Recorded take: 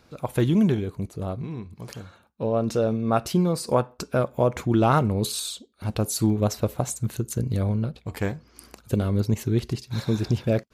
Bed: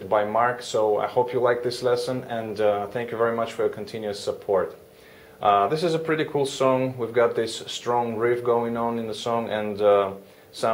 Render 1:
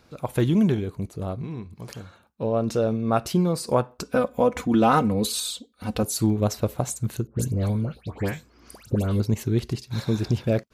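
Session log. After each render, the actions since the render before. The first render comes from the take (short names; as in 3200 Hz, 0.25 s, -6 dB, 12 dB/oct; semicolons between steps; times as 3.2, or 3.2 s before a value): 4.05–6.03 comb 4 ms, depth 74%; 7.27–9.2 dispersion highs, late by 0.118 s, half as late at 2000 Hz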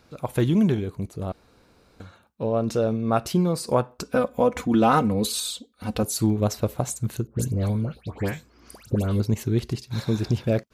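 1.32–2 room tone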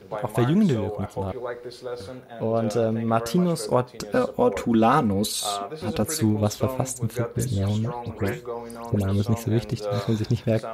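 add bed -11 dB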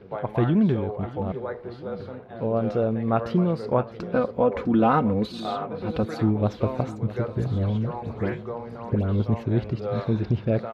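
air absorption 330 m; feedback echo 0.652 s, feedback 59%, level -16 dB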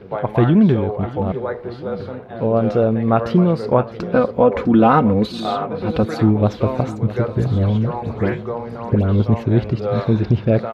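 gain +7.5 dB; limiter -3 dBFS, peak gain reduction 2 dB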